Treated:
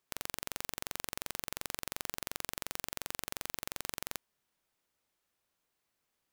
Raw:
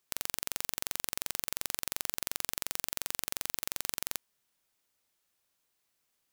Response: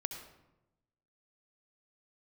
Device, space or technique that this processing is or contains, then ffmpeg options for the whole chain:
behind a face mask: -af "highshelf=frequency=2800:gain=-7.5,volume=1dB"

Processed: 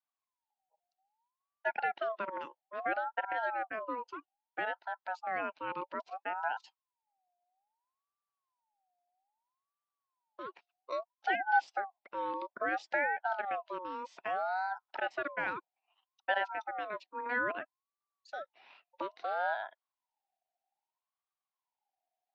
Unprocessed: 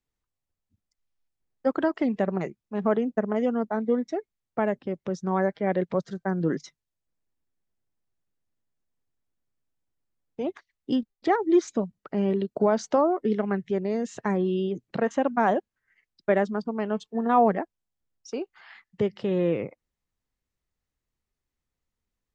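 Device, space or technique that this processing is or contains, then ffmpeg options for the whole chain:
voice changer toy: -filter_complex "[0:a]aeval=exprs='val(0)*sin(2*PI*940*n/s+940*0.25/0.61*sin(2*PI*0.61*n/s))':channel_layout=same,highpass=440,equalizer=frequency=450:width_type=q:width=4:gain=-6,equalizer=frequency=750:width_type=q:width=4:gain=6,equalizer=frequency=1200:width_type=q:width=4:gain=-9,lowpass=frequency=4900:width=0.5412,lowpass=frequency=4900:width=1.3066,asettb=1/sr,asplit=3[link_01][link_02][link_03];[link_01]atrim=end=1.684[link_04];[link_02]atrim=start=1.68:end=2.29,asetpts=PTS-STARTPTS,afade=type=in:duration=0.004:curve=qsin,afade=type=out:start_time=0.606:duration=0.004:curve=qsin,lowpass=frequency=5200:width=0.5412,lowpass=frequency=5200:width=1.3066[link_05];[link_03]atrim=start=2.286[link_06];[link_04][link_05]acrossfade=duration=0.004:curve1=hsin:curve2=qsin[link_07];[link_07][link_06]acrossfade=duration=0.004:curve1=qsin:curve2=hsin,volume=-6dB"

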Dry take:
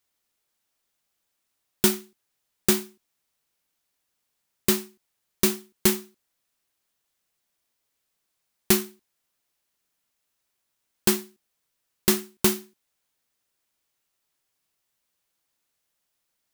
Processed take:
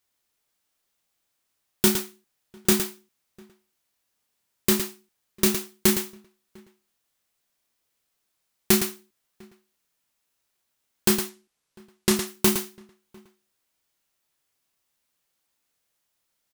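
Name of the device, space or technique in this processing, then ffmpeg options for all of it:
slapback doubling: -filter_complex "[0:a]asettb=1/sr,asplit=3[link_01][link_02][link_03];[link_01]atrim=end=11.184[link_04];[link_02]atrim=start=11.18:end=12.16,asetpts=PTS-STARTPTS,afade=type=in:duration=0.004:curve=qsin,afade=type=out:start_time=0.976:duration=0.004:curve=qsin,lowpass=11000[link_05];[link_03]atrim=start=12.156[link_06];[link_04][link_05]acrossfade=duration=0.004:curve1=hsin:curve2=qsin[link_07];[link_07][link_06]acrossfade=duration=0.004:curve1=qsin:curve2=hsin,asplit=3[link_08][link_09][link_10];[link_09]adelay=29,volume=-8dB[link_11];[link_10]adelay=112,volume=-7.5dB[link_12];[link_08][link_11][link_12]amix=inputs=3:normalize=0,asplit=2[link_13][link_14];[link_14]adelay=699.7,volume=-27dB,highshelf=frequency=4000:gain=-15.7[link_15];[link_13][link_15]amix=inputs=2:normalize=0"

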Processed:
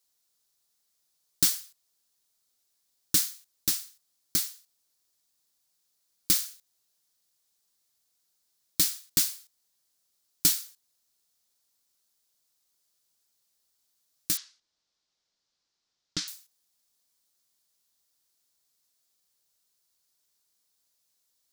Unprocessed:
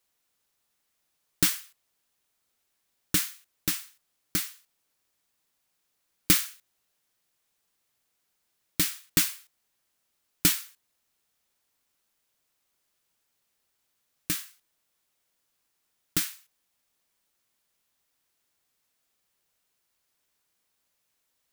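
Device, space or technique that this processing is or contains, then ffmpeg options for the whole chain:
over-bright horn tweeter: -filter_complex "[0:a]highshelf=frequency=3400:width_type=q:width=1.5:gain=7.5,alimiter=limit=-1.5dB:level=0:latency=1:release=452,asettb=1/sr,asplit=3[link_01][link_02][link_03];[link_01]atrim=end=14.374[link_04];[link_02]atrim=start=14.37:end=16.28,asetpts=PTS-STARTPTS,afade=type=in:duration=0.004:curve=qsin,afade=type=out:start_time=1.906:duration=0.004:curve=qsin,lowpass=frequency=5700:width=0.5412,lowpass=frequency=5700:width=1.3066[link_05];[link_03]atrim=start=16.276[link_06];[link_04][link_05]acrossfade=duration=0.004:curve1=hsin:curve2=qsin[link_07];[link_07][link_06]acrossfade=duration=0.004:curve1=qsin:curve2=hsin,volume=-5.5dB"

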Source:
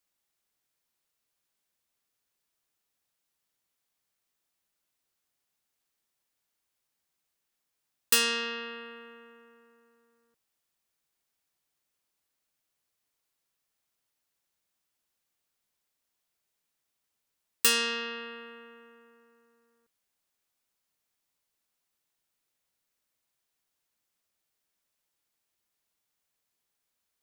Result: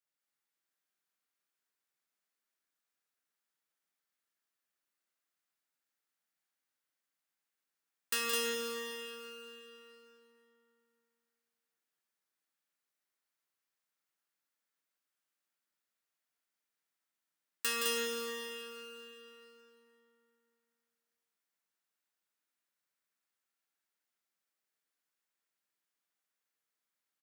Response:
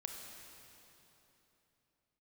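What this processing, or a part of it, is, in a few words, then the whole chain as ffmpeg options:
stadium PA: -filter_complex "[0:a]highpass=frequency=160:width=0.5412,highpass=frequency=160:width=1.3066,equalizer=frequency=1600:width_type=o:width=0.99:gain=6,aecho=1:1:169.1|209.9:0.501|0.794[link_01];[1:a]atrim=start_sample=2205[link_02];[link_01][link_02]afir=irnorm=-1:irlink=0,volume=-8.5dB"

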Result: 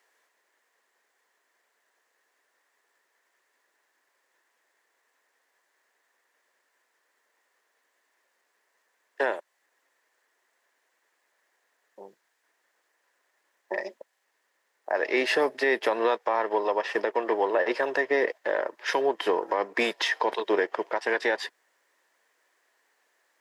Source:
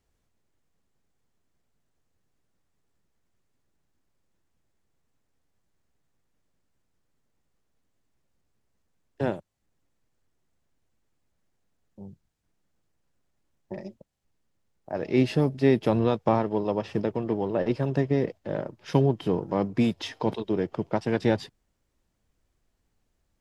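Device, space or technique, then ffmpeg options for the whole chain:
laptop speaker: -af "highpass=frequency=430:width=0.5412,highpass=frequency=430:width=1.3066,equalizer=frequency=1000:width_type=o:width=0.25:gain=6,equalizer=frequency=1800:width_type=o:width=0.52:gain=12,alimiter=limit=-22.5dB:level=0:latency=1:release=208,volume=8.5dB"

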